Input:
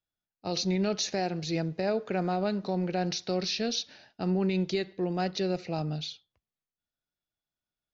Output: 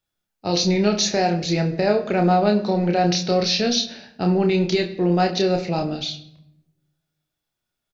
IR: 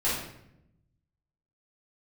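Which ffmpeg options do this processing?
-filter_complex "[0:a]asplit=2[a][b];[b]adelay=29,volume=-5dB[c];[a][c]amix=inputs=2:normalize=0,asplit=2[d][e];[1:a]atrim=start_sample=2205[f];[e][f]afir=irnorm=-1:irlink=0,volume=-20dB[g];[d][g]amix=inputs=2:normalize=0,volume=8dB"

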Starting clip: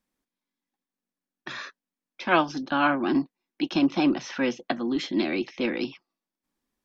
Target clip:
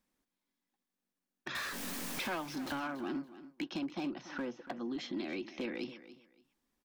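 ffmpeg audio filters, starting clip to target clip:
-filter_complex "[0:a]asettb=1/sr,asplit=3[a][b][c];[a]atrim=end=1.554[d];[b]atrim=start=1.55:end=2.8,asetpts=PTS-STARTPTS,afade=t=in:d=0.004:c=qsin,afade=t=out:st=1.246:d=0.004:c=qsin,aeval=exprs='val(0)+0.5*0.0299*sgn(val(0))':c=same[e];[c]atrim=start=2.796[f];[d][e]acrossfade=d=0.004:c1=hsin:c2=qsin[g];[g][f]acrossfade=d=0.004:c1=qsin:c2=hsin,asettb=1/sr,asplit=3[h][i][j];[h]atrim=end=4.214[k];[i]atrim=start=4.21:end=4.77,asetpts=PTS-STARTPTS,afade=t=in:d=0.004:c=qsin,afade=t=out:st=0.556:d=0.004:c=qsin,highshelf=f=1.8k:t=q:w=1.5:g=-7[l];[j]atrim=start=4.766[m];[k][l]acrossfade=d=0.004:c1=hsin:c2=qsin[n];[n][m]acrossfade=d=0.004:c1=qsin:c2=hsin,acompressor=threshold=-38dB:ratio=4,asoftclip=type=hard:threshold=-31dB,aecho=1:1:284|568:0.178|0.0373"

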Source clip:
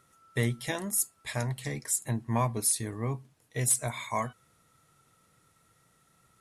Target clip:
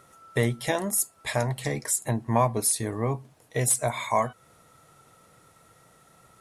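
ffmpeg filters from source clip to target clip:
-filter_complex "[0:a]equalizer=f=650:w=0.89:g=7.5,asplit=2[a][b];[b]acompressor=threshold=-36dB:ratio=6,volume=1.5dB[c];[a][c]amix=inputs=2:normalize=0"

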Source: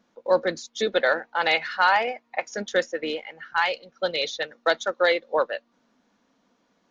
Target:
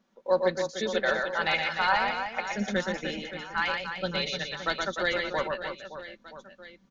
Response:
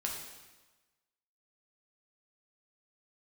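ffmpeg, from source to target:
-af "aecho=1:1:5.2:0.42,asubboost=boost=11:cutoff=160,aecho=1:1:120|300|570|975|1582:0.631|0.398|0.251|0.158|0.1,volume=-5.5dB"

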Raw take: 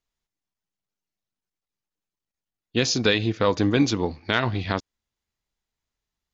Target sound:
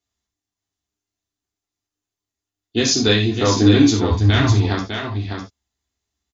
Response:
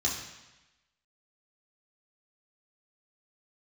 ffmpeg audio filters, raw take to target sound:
-filter_complex "[0:a]aecho=1:1:603:0.473,asplit=3[a][b][c];[a]afade=t=out:st=4.09:d=0.02[d];[b]asubboost=boost=9.5:cutoff=100,afade=t=in:st=4.09:d=0.02,afade=t=out:st=4.5:d=0.02[e];[c]afade=t=in:st=4.5:d=0.02[f];[d][e][f]amix=inputs=3:normalize=0[g];[1:a]atrim=start_sample=2205,atrim=end_sample=4410[h];[g][h]afir=irnorm=-1:irlink=0,volume=-3.5dB"

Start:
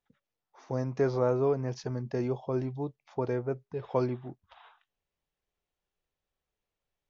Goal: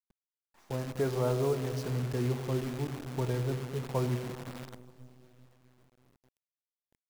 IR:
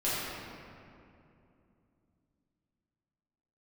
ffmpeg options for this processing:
-filter_complex "[0:a]asplit=2[a][b];[1:a]atrim=start_sample=2205[c];[b][c]afir=irnorm=-1:irlink=0,volume=-15.5dB[d];[a][d]amix=inputs=2:normalize=0,asubboost=boost=3:cutoff=210,acrusher=bits=7:dc=4:mix=0:aa=0.000001,volume=-4.5dB"

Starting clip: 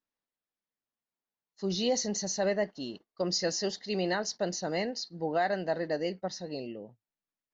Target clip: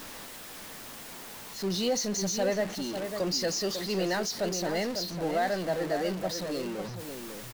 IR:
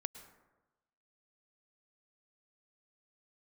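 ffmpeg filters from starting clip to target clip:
-filter_complex "[0:a]aeval=exprs='val(0)+0.5*0.0237*sgn(val(0))':c=same,asplit=2[a][b];[b]adelay=548.1,volume=-7dB,highshelf=f=4k:g=-12.3[c];[a][c]amix=inputs=2:normalize=0,volume=-1.5dB"

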